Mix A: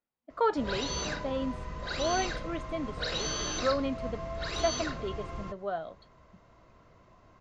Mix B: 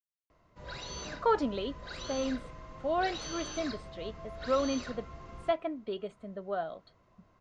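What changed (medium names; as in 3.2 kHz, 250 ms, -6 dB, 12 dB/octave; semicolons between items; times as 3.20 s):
speech: entry +0.85 s; background -7.5 dB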